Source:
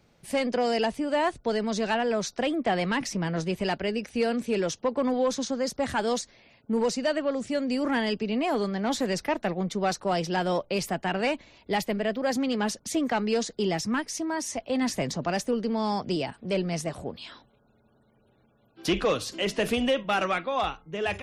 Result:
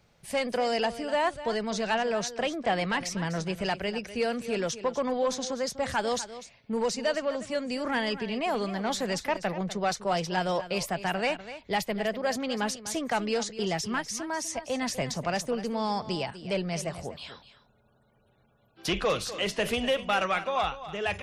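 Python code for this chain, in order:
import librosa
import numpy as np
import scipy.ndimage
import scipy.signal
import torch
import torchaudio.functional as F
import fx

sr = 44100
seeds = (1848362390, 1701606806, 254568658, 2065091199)

y = fx.peak_eq(x, sr, hz=290.0, db=-7.5, octaves=0.99)
y = y + 10.0 ** (-13.5 / 20.0) * np.pad(y, (int(248 * sr / 1000.0), 0))[:len(y)]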